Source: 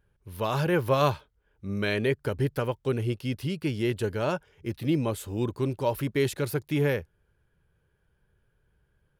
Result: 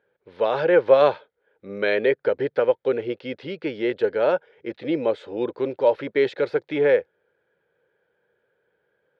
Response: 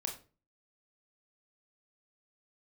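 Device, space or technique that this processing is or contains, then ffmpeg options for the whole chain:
phone earpiece: -af "highpass=420,equalizer=f=500:t=q:w=4:g=9,equalizer=f=1100:t=q:w=4:g=-8,equalizer=f=2800:t=q:w=4:g=-8,lowpass=f=3400:w=0.5412,lowpass=f=3400:w=1.3066,volume=2.24"

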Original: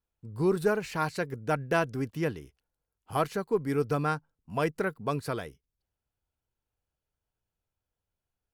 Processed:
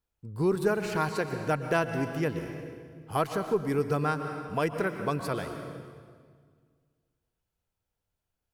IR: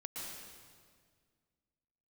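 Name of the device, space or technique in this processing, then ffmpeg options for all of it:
ducked reverb: -filter_complex "[0:a]asplit=3[s0][s1][s2];[1:a]atrim=start_sample=2205[s3];[s1][s3]afir=irnorm=-1:irlink=0[s4];[s2]apad=whole_len=376322[s5];[s4][s5]sidechaincompress=threshold=0.0355:ratio=8:attack=45:release=390,volume=0.944[s6];[s0][s6]amix=inputs=2:normalize=0,volume=0.794"

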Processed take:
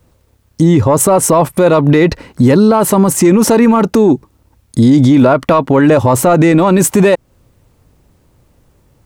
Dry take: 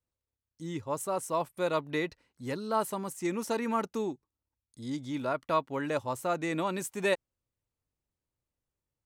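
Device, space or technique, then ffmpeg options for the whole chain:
mastering chain: -af "equalizer=f=190:t=o:w=0.77:g=2,acompressor=threshold=0.02:ratio=2,asoftclip=type=tanh:threshold=0.0531,tiltshelf=f=1400:g=5,alimiter=level_in=56.2:limit=0.891:release=50:level=0:latency=1,volume=0.891"

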